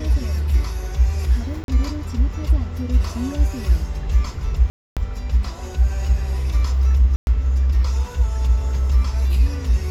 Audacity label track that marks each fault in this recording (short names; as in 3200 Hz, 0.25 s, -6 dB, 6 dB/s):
1.640000	1.680000	gap 42 ms
4.700000	4.970000	gap 0.267 s
7.160000	7.270000	gap 0.111 s